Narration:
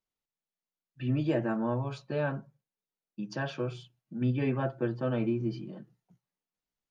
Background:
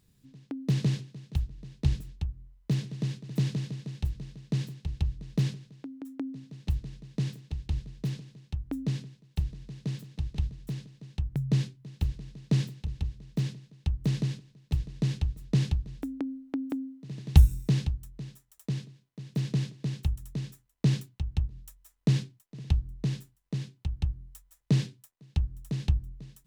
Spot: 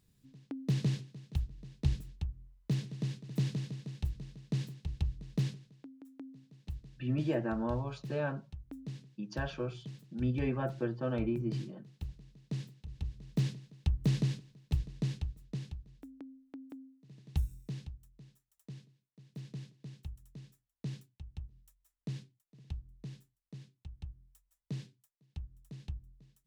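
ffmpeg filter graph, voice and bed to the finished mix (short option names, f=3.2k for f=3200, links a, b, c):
-filter_complex "[0:a]adelay=6000,volume=-3.5dB[a];[1:a]volume=6.5dB,afade=t=out:st=5.31:d=0.75:silence=0.398107,afade=t=in:st=12.86:d=0.43:silence=0.281838,afade=t=out:st=14.51:d=1.09:silence=0.199526[b];[a][b]amix=inputs=2:normalize=0"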